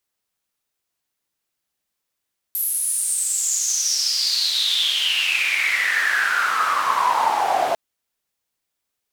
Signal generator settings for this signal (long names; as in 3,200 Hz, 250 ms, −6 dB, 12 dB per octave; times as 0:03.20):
filter sweep on noise white, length 5.20 s bandpass, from 12,000 Hz, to 680 Hz, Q 9.3, exponential, gain ramp +14 dB